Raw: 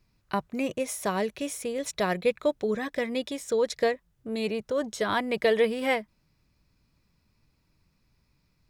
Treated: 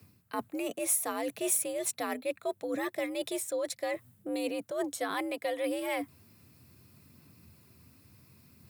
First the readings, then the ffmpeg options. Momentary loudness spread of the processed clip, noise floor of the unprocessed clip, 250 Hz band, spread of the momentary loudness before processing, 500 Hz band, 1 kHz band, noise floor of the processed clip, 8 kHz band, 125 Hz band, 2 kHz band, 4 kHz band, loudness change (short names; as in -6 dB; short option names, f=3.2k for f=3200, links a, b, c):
8 LU, -71 dBFS, -4.5 dB, 7 LU, -7.0 dB, -5.5 dB, -66 dBFS, +6.0 dB, -14.0 dB, -7.0 dB, -6.0 dB, -4.5 dB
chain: -af "areverse,acompressor=threshold=-41dB:ratio=5,areverse,aphaser=in_gain=1:out_gain=1:delay=4.8:decay=0.22:speed=0.69:type=sinusoidal,aexciter=amount=2.5:drive=8.5:freq=8k,afreqshift=73,volume=8dB"